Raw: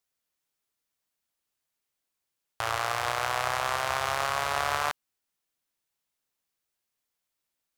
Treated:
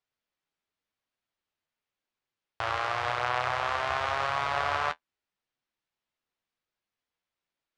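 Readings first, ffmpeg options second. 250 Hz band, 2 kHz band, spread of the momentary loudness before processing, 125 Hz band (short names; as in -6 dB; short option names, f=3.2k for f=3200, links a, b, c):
0.0 dB, -0.5 dB, 4 LU, 0.0 dB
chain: -af "lowpass=3.7k,flanger=delay=8:depth=4.4:regen=-36:speed=0.9:shape=sinusoidal,volume=3.5dB"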